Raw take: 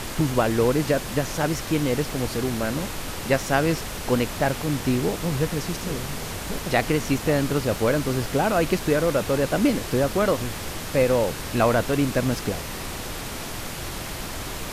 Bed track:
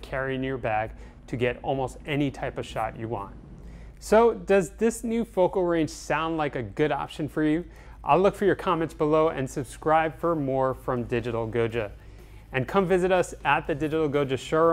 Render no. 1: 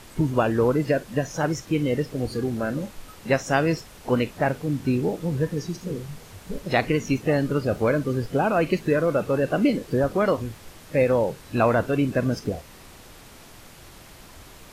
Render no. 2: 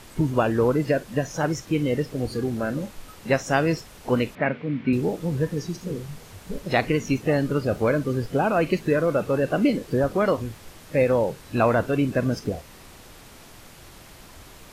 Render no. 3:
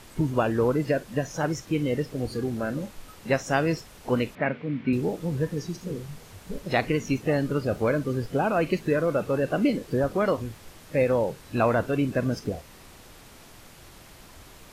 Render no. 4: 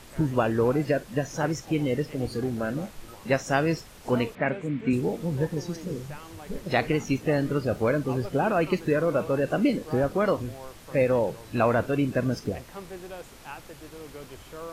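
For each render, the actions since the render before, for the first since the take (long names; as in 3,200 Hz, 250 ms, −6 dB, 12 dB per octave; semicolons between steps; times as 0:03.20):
noise reduction from a noise print 14 dB
0:04.35–0:04.93: loudspeaker in its box 150–3,300 Hz, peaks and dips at 230 Hz +6 dB, 340 Hz −4 dB, 800 Hz −6 dB, 2,200 Hz +9 dB
level −2.5 dB
mix in bed track −18.5 dB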